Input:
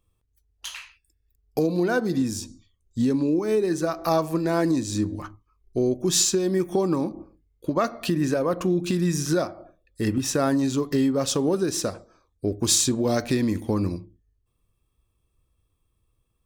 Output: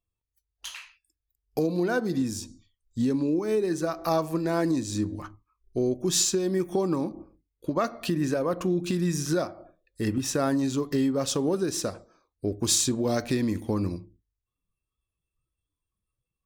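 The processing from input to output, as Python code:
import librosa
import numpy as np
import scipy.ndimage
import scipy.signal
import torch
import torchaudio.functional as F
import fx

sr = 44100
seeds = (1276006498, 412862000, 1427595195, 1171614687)

y = fx.noise_reduce_blind(x, sr, reduce_db=13)
y = y * librosa.db_to_amplitude(-3.0)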